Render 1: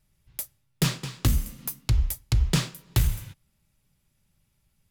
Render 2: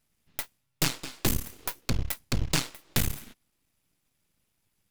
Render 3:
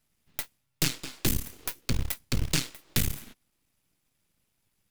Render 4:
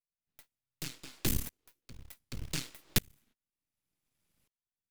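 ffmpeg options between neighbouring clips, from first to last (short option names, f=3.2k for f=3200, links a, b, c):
-af "aeval=exprs='0.266*(cos(1*acos(clip(val(0)/0.266,-1,1)))-cos(1*PI/2))+0.075*(cos(4*acos(clip(val(0)/0.266,-1,1)))-cos(4*PI/2))':c=same,aeval=exprs='abs(val(0))':c=same,lowshelf=f=260:g=-8"
-filter_complex "[0:a]acrossover=split=520|1400[a][b][c];[b]acompressor=threshold=-50dB:ratio=6[d];[a][d][c]amix=inputs=3:normalize=0,acrusher=bits=4:mode=log:mix=0:aa=0.000001"
-af "aeval=exprs='val(0)*pow(10,-33*if(lt(mod(-0.67*n/s,1),2*abs(-0.67)/1000),1-mod(-0.67*n/s,1)/(2*abs(-0.67)/1000),(mod(-0.67*n/s,1)-2*abs(-0.67)/1000)/(1-2*abs(-0.67)/1000))/20)':c=same"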